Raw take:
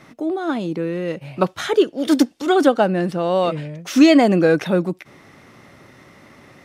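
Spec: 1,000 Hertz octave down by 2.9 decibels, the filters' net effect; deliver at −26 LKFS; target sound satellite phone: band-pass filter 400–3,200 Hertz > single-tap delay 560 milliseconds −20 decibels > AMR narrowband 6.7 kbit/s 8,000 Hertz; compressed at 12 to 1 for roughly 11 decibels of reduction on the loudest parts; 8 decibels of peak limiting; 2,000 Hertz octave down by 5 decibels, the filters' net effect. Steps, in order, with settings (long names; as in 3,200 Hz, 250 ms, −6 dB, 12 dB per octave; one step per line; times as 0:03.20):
parametric band 1,000 Hz −3 dB
parametric band 2,000 Hz −5 dB
downward compressor 12 to 1, threshold −19 dBFS
brickwall limiter −17.5 dBFS
band-pass filter 400–3,200 Hz
single-tap delay 560 ms −20 dB
level +5.5 dB
AMR narrowband 6.7 kbit/s 8,000 Hz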